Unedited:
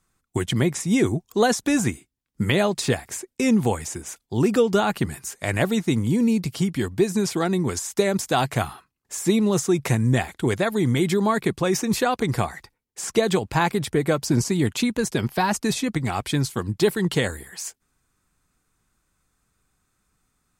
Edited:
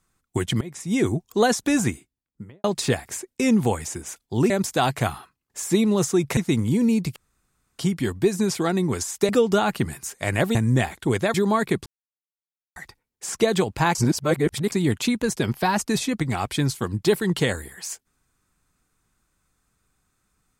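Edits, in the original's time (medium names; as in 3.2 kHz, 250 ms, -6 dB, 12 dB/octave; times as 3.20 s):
0.61–1.10 s: fade in, from -22 dB
1.89–2.64 s: studio fade out
4.50–5.76 s: swap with 8.05–9.92 s
6.55 s: insert room tone 0.63 s
10.71–11.09 s: delete
11.61–12.51 s: mute
13.70–14.47 s: reverse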